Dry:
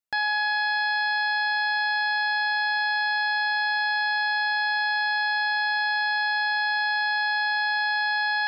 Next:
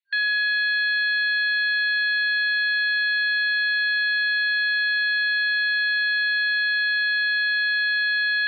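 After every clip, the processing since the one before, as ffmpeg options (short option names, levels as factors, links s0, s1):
-af "afftfilt=real='re*between(b*sr/4096,1600,4400)':imag='im*between(b*sr/4096,1600,4400)':win_size=4096:overlap=0.75,volume=1.58"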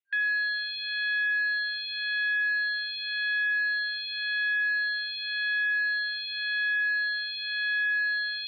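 -filter_complex "[0:a]asplit=2[s0][s1];[s1]afreqshift=-0.91[s2];[s0][s2]amix=inputs=2:normalize=1,volume=0.668"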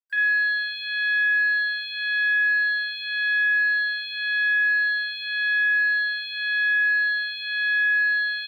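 -filter_complex "[0:a]acrusher=bits=10:mix=0:aa=0.000001,asplit=2[s0][s1];[s1]aecho=0:1:37|50:0.398|0.501[s2];[s0][s2]amix=inputs=2:normalize=0,volume=1.19"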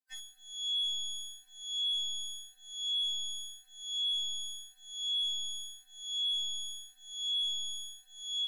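-af "asoftclip=type=tanh:threshold=0.0422,afftfilt=real='re*3.46*eq(mod(b,12),0)':imag='im*3.46*eq(mod(b,12),0)':win_size=2048:overlap=0.75"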